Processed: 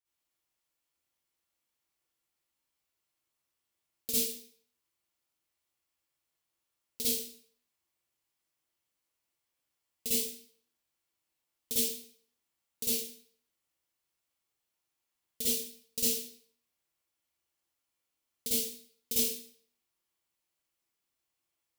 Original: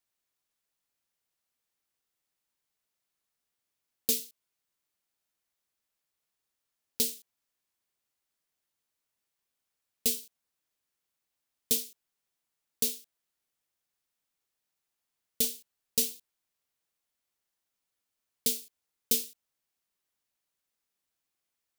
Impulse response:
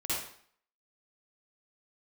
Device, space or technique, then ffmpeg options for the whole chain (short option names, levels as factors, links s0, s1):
bathroom: -filter_complex "[1:a]atrim=start_sample=2205[s0];[0:a][s0]afir=irnorm=-1:irlink=0,volume=0.562"